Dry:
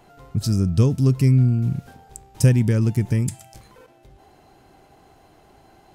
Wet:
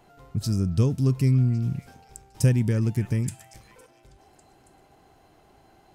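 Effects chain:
echo through a band-pass that steps 277 ms, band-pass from 1,400 Hz, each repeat 0.7 octaves, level −11 dB
level −4.5 dB

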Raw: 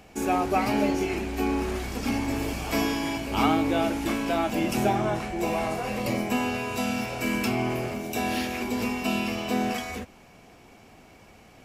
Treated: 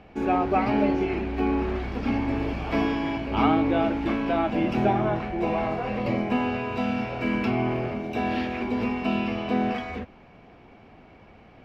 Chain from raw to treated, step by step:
high-frequency loss of the air 320 metres
level +2.5 dB

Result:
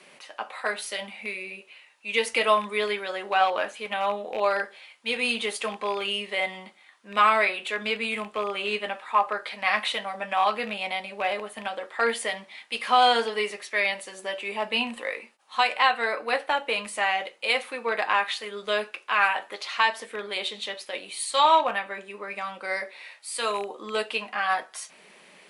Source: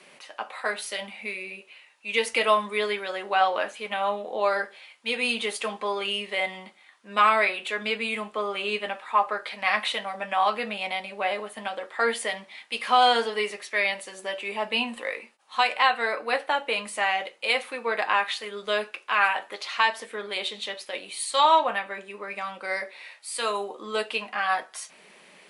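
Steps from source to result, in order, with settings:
loose part that buzzes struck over −41 dBFS, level −27 dBFS

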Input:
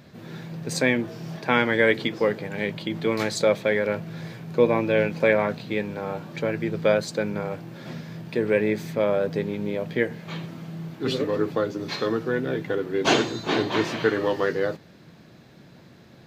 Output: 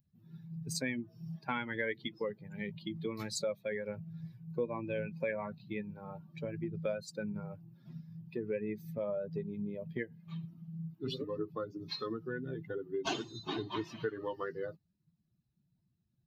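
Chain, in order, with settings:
spectral dynamics exaggerated over time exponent 2
downward compressor 3 to 1, threshold −34 dBFS, peak gain reduction 14 dB
level −1.5 dB

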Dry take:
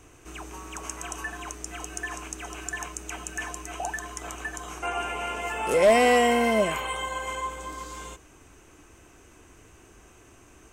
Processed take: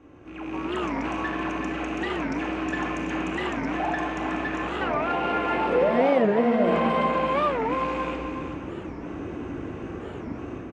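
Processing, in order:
loose part that buzzes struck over −44 dBFS, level −29 dBFS
spectral tilt −4 dB per octave
brickwall limiter −28.5 dBFS, peak gain reduction 24 dB
automatic gain control gain up to 14.5 dB
gain into a clipping stage and back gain 17.5 dB
band-pass filter 210–3,600 Hz
on a send: single-tap delay 377 ms −8.5 dB
on the sum: rectangular room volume 2,600 cubic metres, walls mixed, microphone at 2.3 metres
wow of a warped record 45 rpm, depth 250 cents
level −2.5 dB

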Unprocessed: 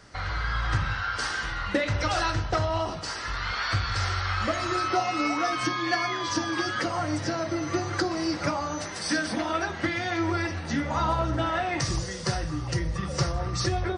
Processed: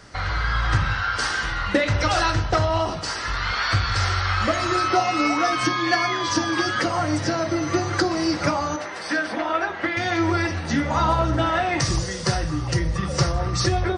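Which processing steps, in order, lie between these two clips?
0:08.76–0:09.97: bass and treble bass −14 dB, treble −14 dB
level +5.5 dB

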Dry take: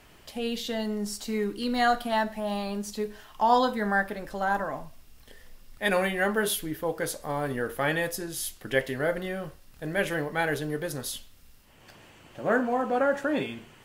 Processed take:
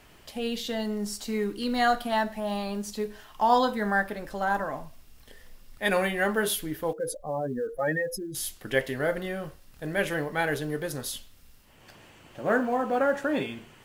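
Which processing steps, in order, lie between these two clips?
0:06.93–0:08.35: expanding power law on the bin magnitudes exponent 2.6
log-companded quantiser 8 bits

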